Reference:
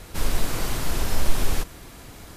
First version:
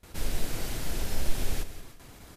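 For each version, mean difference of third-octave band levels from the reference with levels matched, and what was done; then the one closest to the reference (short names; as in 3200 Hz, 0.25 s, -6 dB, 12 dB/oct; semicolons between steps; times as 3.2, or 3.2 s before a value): 1.5 dB: gate with hold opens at -32 dBFS; dynamic EQ 1100 Hz, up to -7 dB, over -52 dBFS, Q 2.3; feedback echo 0.178 s, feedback 28%, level -13 dB; gain -6.5 dB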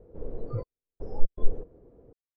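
25.0 dB: synth low-pass 470 Hz, resonance Q 4.9; step gate "xxxxx...xx.x" 120 bpm -60 dB; spectral noise reduction 30 dB; gain +16.5 dB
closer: first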